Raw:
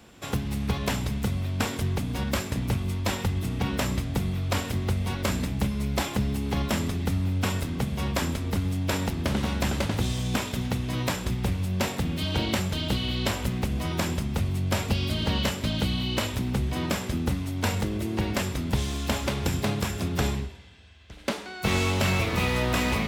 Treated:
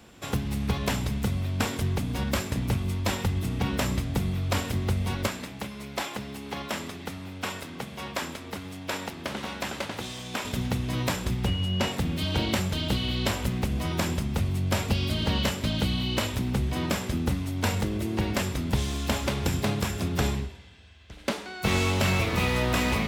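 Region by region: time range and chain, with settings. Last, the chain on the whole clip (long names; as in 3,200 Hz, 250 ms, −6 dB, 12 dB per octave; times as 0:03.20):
0:05.27–0:10.45: high-pass filter 600 Hz 6 dB per octave + high-shelf EQ 4,800 Hz −5.5 dB
0:11.45–0:11.91: high-shelf EQ 9,600 Hz −11 dB + steady tone 2,900 Hz −34 dBFS
whole clip: no processing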